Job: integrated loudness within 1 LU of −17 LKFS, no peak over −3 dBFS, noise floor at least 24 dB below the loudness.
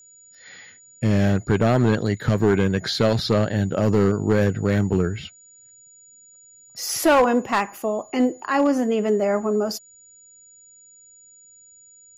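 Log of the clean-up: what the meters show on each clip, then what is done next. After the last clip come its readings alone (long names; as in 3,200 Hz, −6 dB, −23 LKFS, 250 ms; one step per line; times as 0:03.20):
share of clipped samples 1.0%; peaks flattened at −11.0 dBFS; interfering tone 6,900 Hz; level of the tone −48 dBFS; integrated loudness −21.0 LKFS; sample peak −11.0 dBFS; target loudness −17.0 LKFS
→ clipped peaks rebuilt −11 dBFS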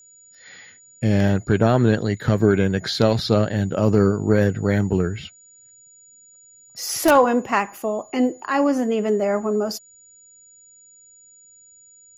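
share of clipped samples 0.0%; interfering tone 6,900 Hz; level of the tone −48 dBFS
→ notch filter 6,900 Hz, Q 30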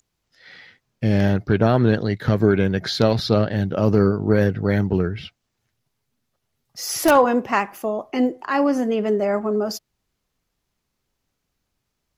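interfering tone none found; integrated loudness −20.0 LKFS; sample peak −2.0 dBFS; target loudness −17.0 LKFS
→ level +3 dB
brickwall limiter −3 dBFS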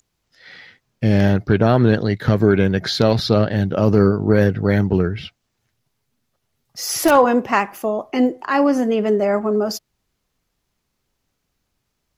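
integrated loudness −17.5 LKFS; sample peak −3.0 dBFS; background noise floor −74 dBFS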